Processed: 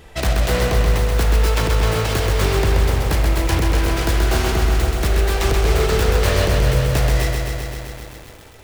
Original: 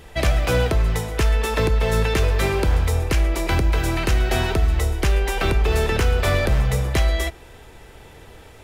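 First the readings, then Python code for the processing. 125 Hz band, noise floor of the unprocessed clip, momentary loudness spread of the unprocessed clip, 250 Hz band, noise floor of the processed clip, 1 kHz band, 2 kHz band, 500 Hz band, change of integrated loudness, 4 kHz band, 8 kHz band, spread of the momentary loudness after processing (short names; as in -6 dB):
+2.5 dB, -45 dBFS, 2 LU, +2.5 dB, -41 dBFS, +3.0 dB, +1.5 dB, +2.5 dB, +2.5 dB, +3.5 dB, +4.5 dB, 5 LU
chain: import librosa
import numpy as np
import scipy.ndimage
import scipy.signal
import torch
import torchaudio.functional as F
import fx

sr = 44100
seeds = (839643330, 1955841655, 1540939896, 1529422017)

y = fx.self_delay(x, sr, depth_ms=0.46)
y = fx.echo_crushed(y, sr, ms=130, feedback_pct=80, bits=7, wet_db=-4.0)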